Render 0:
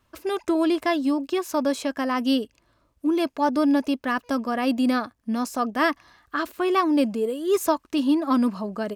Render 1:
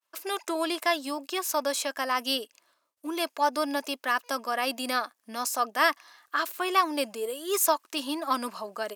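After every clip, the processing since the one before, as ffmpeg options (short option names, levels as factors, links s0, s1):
-af "agate=range=0.0224:threshold=0.00126:ratio=3:detection=peak,highpass=610,aemphasis=mode=production:type=cd"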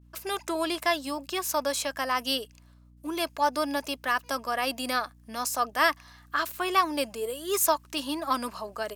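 -af "aeval=exprs='val(0)+0.002*(sin(2*PI*60*n/s)+sin(2*PI*2*60*n/s)/2+sin(2*PI*3*60*n/s)/3+sin(2*PI*4*60*n/s)/4+sin(2*PI*5*60*n/s)/5)':c=same"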